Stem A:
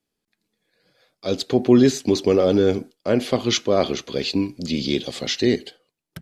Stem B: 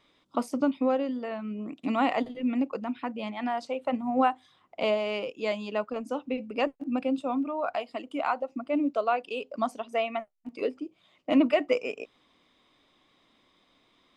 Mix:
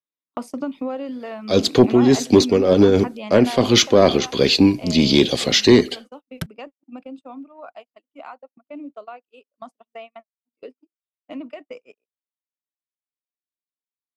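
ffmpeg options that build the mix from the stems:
-filter_complex "[0:a]acrossover=split=400[s0][s1];[s1]acompressor=threshold=0.1:ratio=2.5[s2];[s0][s2]amix=inputs=2:normalize=0,adelay=250,volume=1.33[s3];[1:a]lowshelf=f=76:g=-11,acrossover=split=190[s4][s5];[s5]acompressor=threshold=0.0447:ratio=4[s6];[s4][s6]amix=inputs=2:normalize=0,volume=0.596,afade=t=out:st=3.46:d=0.3:silence=0.375837,asplit=2[s7][s8];[s8]apad=whole_len=284944[s9];[s3][s9]sidechaincompress=threshold=0.01:ratio=8:attack=20:release=142[s10];[s10][s7]amix=inputs=2:normalize=0,agate=range=0.0126:threshold=0.00631:ratio=16:detection=peak,acontrast=79"

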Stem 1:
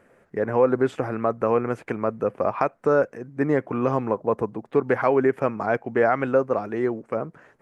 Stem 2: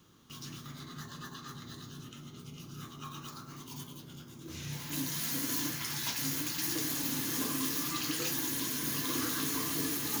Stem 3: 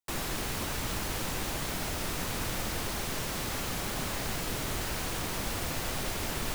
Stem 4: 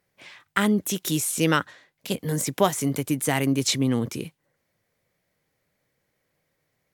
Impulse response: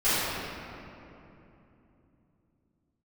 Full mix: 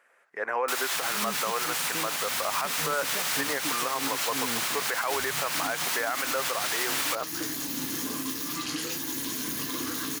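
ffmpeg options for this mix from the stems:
-filter_complex "[0:a]volume=1[s0];[1:a]afwtdn=0.00562,adelay=650,volume=0.531[s1];[2:a]adelay=600,volume=1.26[s2];[3:a]adelay=550,volume=0.15[s3];[s0][s2]amix=inputs=2:normalize=0,highpass=1100,alimiter=limit=0.106:level=0:latency=1:release=66,volume=1[s4];[s1][s3]amix=inputs=2:normalize=0,equalizer=f=130:t=o:w=0.38:g=-9.5,alimiter=level_in=2.82:limit=0.0631:level=0:latency=1:release=130,volume=0.355,volume=1[s5];[s4][s5]amix=inputs=2:normalize=0,dynaudnorm=f=360:g=3:m=3.76,alimiter=limit=0.126:level=0:latency=1:release=214"

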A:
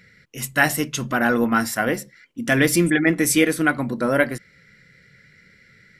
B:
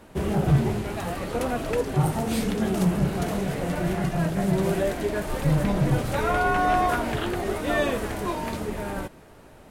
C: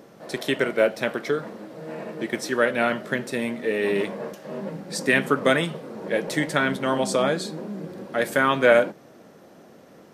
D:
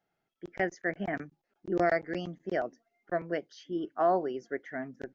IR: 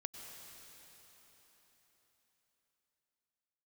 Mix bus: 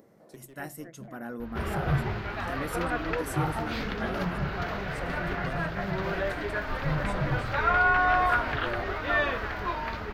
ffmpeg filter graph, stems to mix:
-filter_complex "[0:a]volume=0.141,asplit=2[s0][s1];[1:a]highshelf=f=7500:g=-8.5,aeval=exprs='val(0)+0.0112*(sin(2*PI*50*n/s)+sin(2*PI*2*50*n/s)/2+sin(2*PI*3*50*n/s)/3+sin(2*PI*4*50*n/s)/4+sin(2*PI*5*50*n/s)/5)':c=same,firequalizer=gain_entry='entry(100,0);entry(190,-8);entry(1400,15);entry(4600,11);entry(8900,-20);entry(14000,-2)':delay=0.05:min_phase=1,adelay=1400,volume=0.668[s2];[2:a]acompressor=mode=upward:threshold=0.0224:ratio=2.5,aeval=exprs='clip(val(0),-1,0.0794)':c=same,volume=0.15[s3];[3:a]volume=0.168[s4];[s1]apad=whole_len=447144[s5];[s3][s5]sidechaincompress=threshold=0.00316:ratio=8:attack=7.9:release=469[s6];[s0][s2][s6][s4]amix=inputs=4:normalize=0,equalizer=f=3100:t=o:w=2.5:g=-10.5"

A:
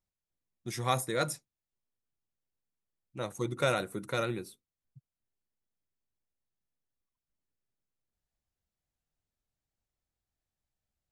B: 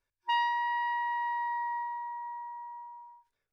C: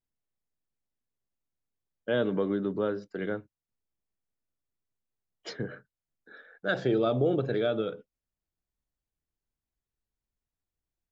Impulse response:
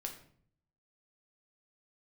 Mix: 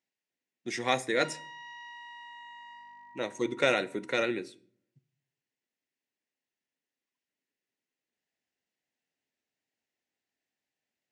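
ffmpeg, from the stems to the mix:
-filter_complex "[0:a]volume=1.06,asplit=2[s0][s1];[s1]volume=0.355[s2];[1:a]aeval=exprs='val(0)+0.00316*(sin(2*PI*50*n/s)+sin(2*PI*2*50*n/s)/2+sin(2*PI*3*50*n/s)/3+sin(2*PI*4*50*n/s)/4+sin(2*PI*5*50*n/s)/5)':c=same,asoftclip=type=hard:threshold=0.02,adelay=950,volume=0.224[s3];[3:a]atrim=start_sample=2205[s4];[s2][s4]afir=irnorm=-1:irlink=0[s5];[s0][s3][s5]amix=inputs=3:normalize=0,highpass=260,equalizer=f=260:t=q:w=4:g=7,equalizer=f=410:t=q:w=4:g=3,equalizer=f=1200:t=q:w=4:g=-8,equalizer=f=1900:t=q:w=4:g=9,equalizer=f=2700:t=q:w=4:g=6,lowpass=f=7500:w=0.5412,lowpass=f=7500:w=1.3066"

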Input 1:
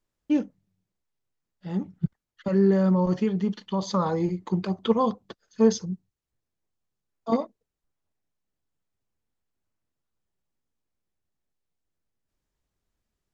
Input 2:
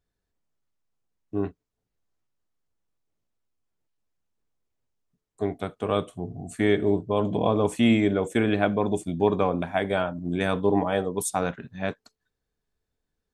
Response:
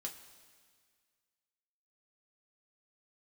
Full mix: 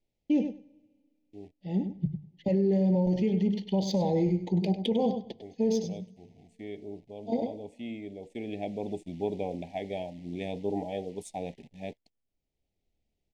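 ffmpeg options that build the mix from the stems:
-filter_complex "[0:a]bandreject=f=50:t=h:w=6,bandreject=f=100:t=h:w=6,bandreject=f=150:t=h:w=6,volume=1.06,asplit=3[s0][s1][s2];[s1]volume=0.2[s3];[s2]volume=0.316[s4];[1:a]acrusher=bits=8:dc=4:mix=0:aa=0.000001,equalizer=f=120:w=3.8:g=-7.5,volume=0.355,afade=t=in:st=8.16:d=0.73:silence=0.334965,asplit=2[s5][s6];[s6]apad=whole_len=588107[s7];[s0][s7]sidechaincompress=threshold=0.00562:ratio=4:attack=6.4:release=715[s8];[2:a]atrim=start_sample=2205[s9];[s3][s9]afir=irnorm=-1:irlink=0[s10];[s4]aecho=0:1:99|198|297:1|0.16|0.0256[s11];[s8][s5][s10][s11]amix=inputs=4:normalize=0,adynamicsmooth=sensitivity=3.5:basefreq=5100,asuperstop=centerf=1300:order=8:qfactor=1.1,alimiter=limit=0.119:level=0:latency=1:release=28"

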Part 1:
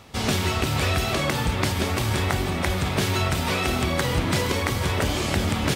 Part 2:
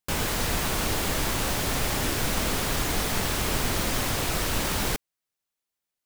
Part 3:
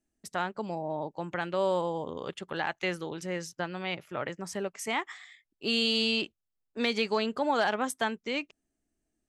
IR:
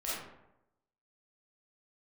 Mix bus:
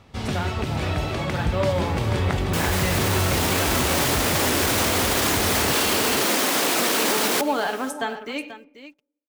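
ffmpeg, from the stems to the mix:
-filter_complex "[0:a]highshelf=f=6500:g=-11,volume=0.562,asplit=2[s0][s1];[s1]volume=0.355[s2];[1:a]highpass=f=250:w=0.5412,highpass=f=250:w=1.3066,dynaudnorm=f=320:g=9:m=3.76,adelay=2450,volume=0.891,asplit=2[s3][s4];[s4]volume=0.0668[s5];[2:a]aecho=1:1:7:0.47,acrusher=bits=8:mix=0:aa=0.5,volume=0.75,asplit=3[s6][s7][s8];[s7]volume=0.237[s9];[s8]volume=0.266[s10];[3:a]atrim=start_sample=2205[s11];[s9][s11]afir=irnorm=-1:irlink=0[s12];[s2][s5][s10]amix=inputs=3:normalize=0,aecho=0:1:486:1[s13];[s0][s3][s6][s12][s13]amix=inputs=5:normalize=0,lowshelf=f=210:g=5,dynaudnorm=f=210:g=21:m=3.76,alimiter=limit=0.251:level=0:latency=1:release=24"

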